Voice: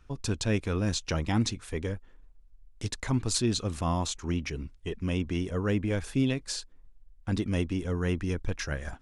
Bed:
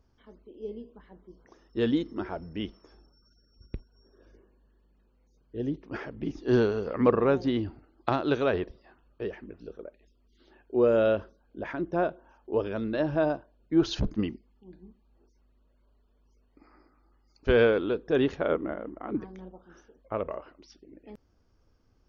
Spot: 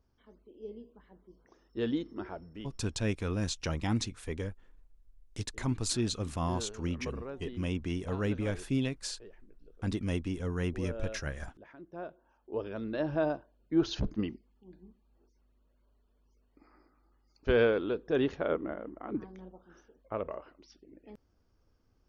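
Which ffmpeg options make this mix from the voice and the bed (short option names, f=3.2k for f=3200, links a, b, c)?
-filter_complex "[0:a]adelay=2550,volume=-4dB[a];[1:a]volume=8.5dB,afade=t=out:st=2.31:d=0.52:silence=0.237137,afade=t=in:st=11.87:d=1.28:silence=0.188365[b];[a][b]amix=inputs=2:normalize=0"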